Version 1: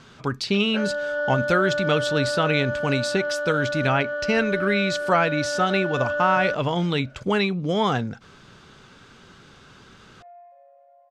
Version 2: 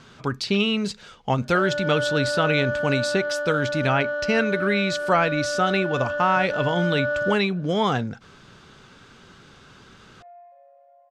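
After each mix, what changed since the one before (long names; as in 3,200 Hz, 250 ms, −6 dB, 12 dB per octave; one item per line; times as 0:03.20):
first sound: entry +0.80 s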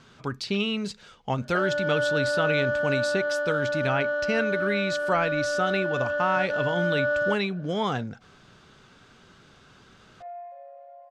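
speech −5.0 dB
second sound +7.5 dB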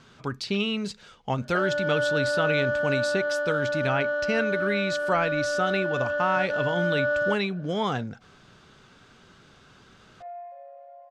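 nothing changed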